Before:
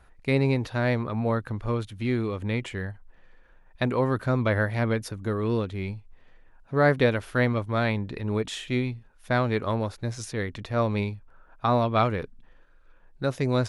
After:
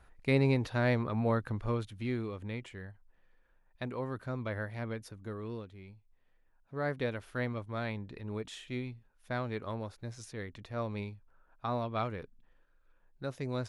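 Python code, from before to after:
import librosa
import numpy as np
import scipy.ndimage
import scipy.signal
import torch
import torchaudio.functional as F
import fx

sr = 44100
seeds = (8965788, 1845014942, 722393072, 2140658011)

y = fx.gain(x, sr, db=fx.line((1.55, -4.0), (2.74, -13.0), (5.38, -13.0), (5.84, -19.5), (7.25, -11.5)))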